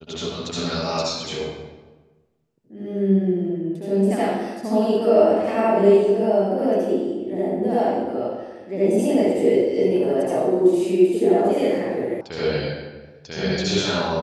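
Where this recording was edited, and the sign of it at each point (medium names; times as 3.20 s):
12.21 s: sound stops dead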